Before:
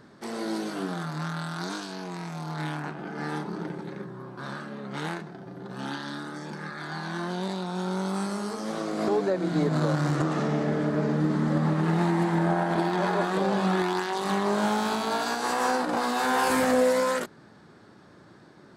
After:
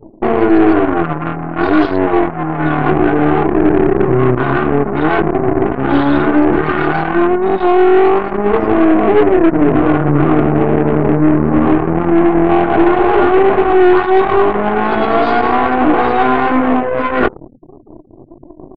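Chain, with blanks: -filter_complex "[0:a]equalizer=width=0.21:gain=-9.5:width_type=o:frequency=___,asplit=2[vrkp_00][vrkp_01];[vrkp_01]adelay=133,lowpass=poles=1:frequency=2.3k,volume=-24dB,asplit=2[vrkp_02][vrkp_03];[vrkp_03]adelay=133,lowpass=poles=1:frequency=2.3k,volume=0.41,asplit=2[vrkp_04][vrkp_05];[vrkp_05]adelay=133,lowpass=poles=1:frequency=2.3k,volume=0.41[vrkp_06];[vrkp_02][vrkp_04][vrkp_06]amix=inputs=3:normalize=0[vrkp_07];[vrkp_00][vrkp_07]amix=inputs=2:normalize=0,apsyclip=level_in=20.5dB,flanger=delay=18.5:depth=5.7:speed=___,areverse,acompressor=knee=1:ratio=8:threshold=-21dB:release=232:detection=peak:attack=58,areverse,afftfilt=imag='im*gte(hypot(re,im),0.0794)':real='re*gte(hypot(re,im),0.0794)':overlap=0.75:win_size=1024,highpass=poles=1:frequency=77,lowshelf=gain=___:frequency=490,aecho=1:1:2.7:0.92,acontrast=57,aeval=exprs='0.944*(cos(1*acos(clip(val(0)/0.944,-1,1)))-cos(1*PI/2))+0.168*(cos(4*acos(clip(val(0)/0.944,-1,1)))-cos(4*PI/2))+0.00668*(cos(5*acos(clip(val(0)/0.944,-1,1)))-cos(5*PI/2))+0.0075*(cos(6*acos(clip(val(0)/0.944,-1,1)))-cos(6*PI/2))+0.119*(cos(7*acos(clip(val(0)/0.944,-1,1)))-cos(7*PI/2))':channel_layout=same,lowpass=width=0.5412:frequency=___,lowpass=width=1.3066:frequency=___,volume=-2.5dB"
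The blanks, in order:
1.7k, 0.37, 9.5, 2.9k, 2.9k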